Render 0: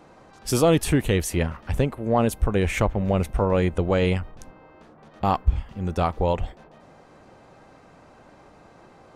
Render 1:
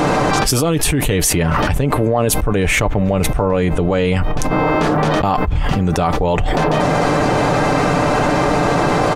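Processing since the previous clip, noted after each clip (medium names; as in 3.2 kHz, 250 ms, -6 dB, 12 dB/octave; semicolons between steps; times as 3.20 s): comb 6.8 ms, depth 44%; level flattener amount 100%; trim -2 dB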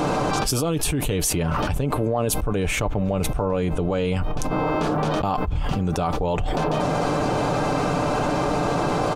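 peaking EQ 1.9 kHz -8 dB 0.37 oct; trim -7 dB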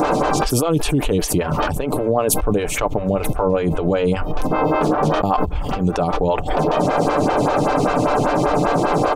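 lamp-driven phase shifter 5.1 Hz; trim +7.5 dB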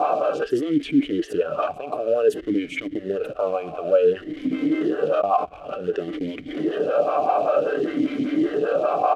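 in parallel at -3.5 dB: companded quantiser 4-bit; on the sum: hysteresis with a dead band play -26 dBFS; talking filter a-i 0.55 Hz; trim +1 dB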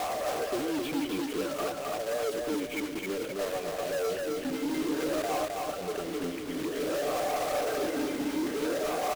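block-companded coder 3-bit; saturation -22.5 dBFS, distortion -8 dB; feedback delay 262 ms, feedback 41%, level -3 dB; trim -6 dB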